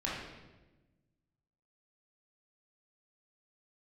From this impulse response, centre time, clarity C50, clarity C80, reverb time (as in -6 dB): 70 ms, 0.5 dB, 3.5 dB, 1.1 s